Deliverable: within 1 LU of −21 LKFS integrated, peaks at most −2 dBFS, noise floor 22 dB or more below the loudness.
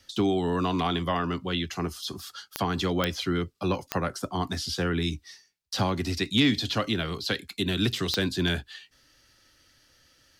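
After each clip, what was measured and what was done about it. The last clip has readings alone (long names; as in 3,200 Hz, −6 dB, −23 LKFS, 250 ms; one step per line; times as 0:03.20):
number of clicks 4; integrated loudness −28.0 LKFS; sample peak −7.0 dBFS; target loudness −21.0 LKFS
→ click removal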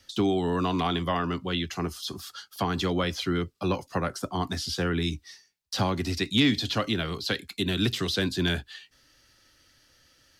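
number of clicks 0; integrated loudness −28.0 LKFS; sample peak −10.5 dBFS; target loudness −21.0 LKFS
→ level +7 dB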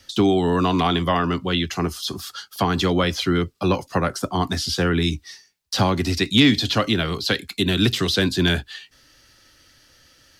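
integrated loudness −21.0 LKFS; sample peak −3.5 dBFS; background noise floor −58 dBFS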